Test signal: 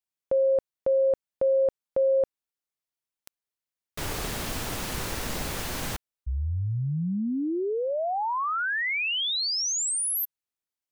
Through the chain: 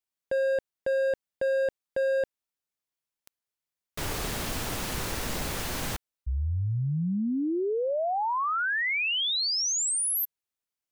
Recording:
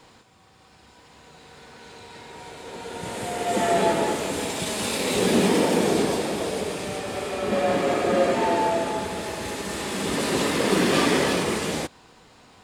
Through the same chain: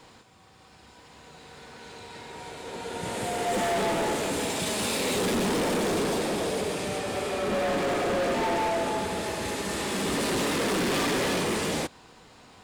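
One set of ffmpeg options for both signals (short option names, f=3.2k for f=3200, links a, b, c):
-af "asoftclip=type=hard:threshold=-24dB"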